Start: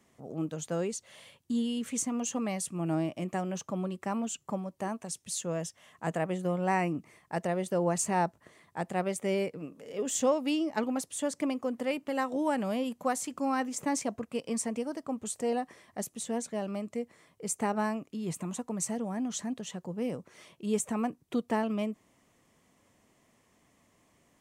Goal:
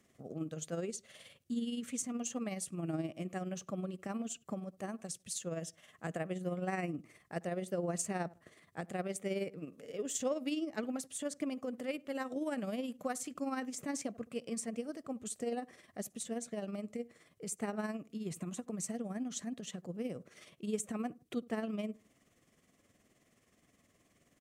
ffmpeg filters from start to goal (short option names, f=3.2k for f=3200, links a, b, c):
-filter_complex "[0:a]equalizer=f=920:w=5.4:g=-14,asplit=2[a][b];[b]adelay=76,lowpass=f=1.2k:p=1,volume=-21.5dB,asplit=2[c][d];[d]adelay=76,lowpass=f=1.2k:p=1,volume=0.26[e];[a][c][e]amix=inputs=3:normalize=0,asplit=2[f][g];[g]acompressor=threshold=-38dB:ratio=6,volume=1dB[h];[f][h]amix=inputs=2:normalize=0,tremolo=f=19:d=0.51,volume=-7dB"